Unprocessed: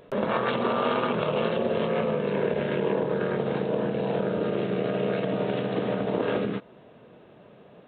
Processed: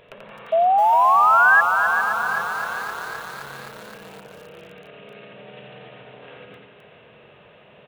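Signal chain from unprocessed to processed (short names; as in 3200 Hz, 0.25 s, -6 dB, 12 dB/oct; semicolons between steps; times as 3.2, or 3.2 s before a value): limiter -21 dBFS, peak gain reduction 9 dB; compressor 20:1, threshold -40 dBFS, peak gain reduction 15.5 dB; high shelf 3300 Hz +8.5 dB; feedback echo 87 ms, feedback 41%, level -3 dB; painted sound rise, 0.52–1.61, 640–1700 Hz -16 dBFS; EQ curve 100 Hz 0 dB, 310 Hz -9 dB, 500 Hz -1 dB, 1400 Hz +1 dB, 2700 Hz +7 dB, 4300 Hz -5 dB, 6800 Hz -10 dB; split-band echo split 360 Hz, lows 0.1 s, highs 0.403 s, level -9 dB; lo-fi delay 0.26 s, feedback 80%, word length 6-bit, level -9 dB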